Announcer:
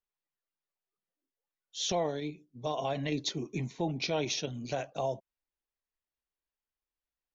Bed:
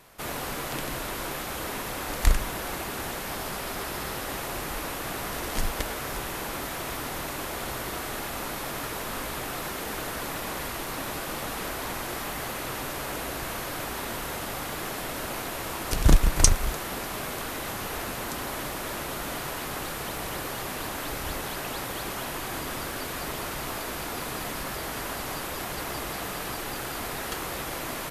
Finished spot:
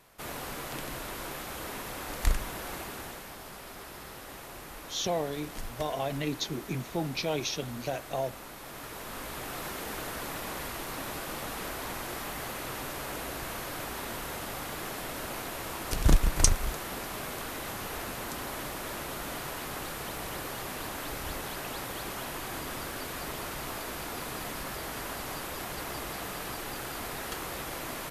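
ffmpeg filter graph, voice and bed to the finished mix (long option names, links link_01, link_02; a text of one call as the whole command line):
ffmpeg -i stem1.wav -i stem2.wav -filter_complex "[0:a]adelay=3150,volume=0.5dB[link_01];[1:a]volume=2dB,afade=type=out:start_time=2.78:duration=0.56:silence=0.501187,afade=type=in:start_time=8.58:duration=1.08:silence=0.421697[link_02];[link_01][link_02]amix=inputs=2:normalize=0" out.wav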